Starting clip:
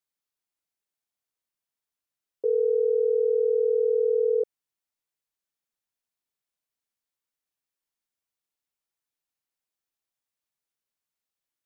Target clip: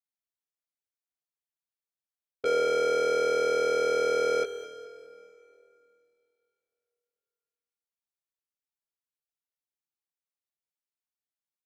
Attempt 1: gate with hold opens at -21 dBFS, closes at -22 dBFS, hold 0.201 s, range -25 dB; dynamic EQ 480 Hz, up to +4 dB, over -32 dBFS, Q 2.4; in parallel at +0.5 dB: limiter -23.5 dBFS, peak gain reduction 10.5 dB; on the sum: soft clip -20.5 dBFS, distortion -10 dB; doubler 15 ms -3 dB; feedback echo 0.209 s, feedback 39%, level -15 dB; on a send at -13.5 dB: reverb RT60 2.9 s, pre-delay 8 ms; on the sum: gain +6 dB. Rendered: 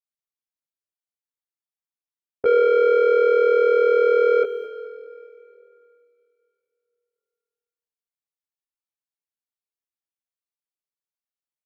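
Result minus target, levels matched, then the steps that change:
soft clip: distortion -5 dB
change: soft clip -31.5 dBFS, distortion -5 dB

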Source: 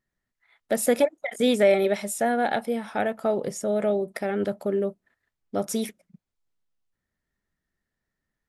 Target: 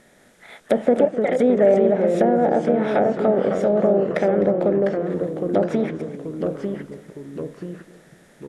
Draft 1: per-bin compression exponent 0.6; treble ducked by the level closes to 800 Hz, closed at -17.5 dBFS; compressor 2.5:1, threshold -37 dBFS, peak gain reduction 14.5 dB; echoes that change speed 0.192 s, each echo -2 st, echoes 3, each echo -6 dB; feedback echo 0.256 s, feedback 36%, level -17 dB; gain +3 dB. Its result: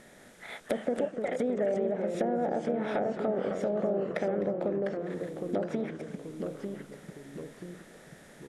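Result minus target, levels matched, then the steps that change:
compressor: peak gain reduction +14.5 dB
remove: compressor 2.5:1, threshold -37 dBFS, peak gain reduction 14.5 dB

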